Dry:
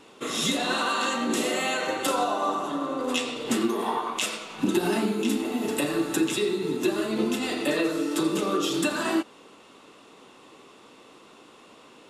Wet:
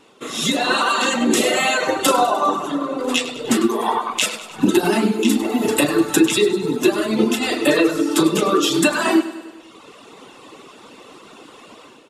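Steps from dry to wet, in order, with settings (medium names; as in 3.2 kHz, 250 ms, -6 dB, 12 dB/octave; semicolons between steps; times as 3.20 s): reverb removal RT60 1.2 s; level rider gain up to 11.5 dB; on a send: feedback delay 100 ms, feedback 59%, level -14.5 dB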